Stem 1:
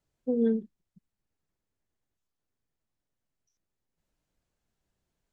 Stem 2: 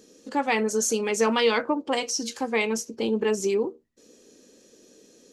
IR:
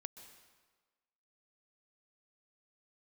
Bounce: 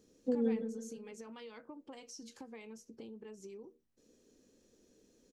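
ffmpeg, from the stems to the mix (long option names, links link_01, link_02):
-filter_complex "[0:a]volume=1.5dB,asplit=2[link_01][link_02];[link_02]volume=-17.5dB[link_03];[1:a]lowshelf=frequency=270:gain=10.5,acompressor=threshold=-30dB:ratio=12,volume=-16.5dB,asplit=2[link_04][link_05];[link_05]apad=whole_len=234746[link_06];[link_01][link_06]sidechaincompress=threshold=-52dB:ratio=8:attack=16:release=1490[link_07];[link_03]aecho=0:1:162|324|486|648|810|972|1134:1|0.48|0.23|0.111|0.0531|0.0255|0.0122[link_08];[link_07][link_04][link_08]amix=inputs=3:normalize=0"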